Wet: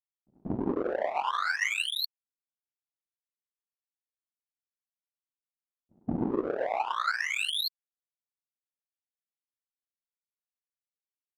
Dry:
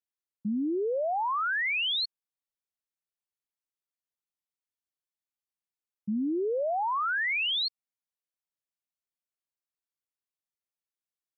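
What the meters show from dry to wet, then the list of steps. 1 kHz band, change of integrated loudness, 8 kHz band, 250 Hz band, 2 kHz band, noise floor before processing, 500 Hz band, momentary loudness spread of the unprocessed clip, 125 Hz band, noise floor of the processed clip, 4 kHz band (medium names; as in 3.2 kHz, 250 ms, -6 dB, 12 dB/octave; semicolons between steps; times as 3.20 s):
-1.5 dB, -2.0 dB, no reading, -2.0 dB, -1.5 dB, under -85 dBFS, -2.0 dB, 8 LU, +7.5 dB, under -85 dBFS, -2.5 dB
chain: pre-echo 186 ms -17 dB; whisper effect; power-law waveshaper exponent 2; trim +4 dB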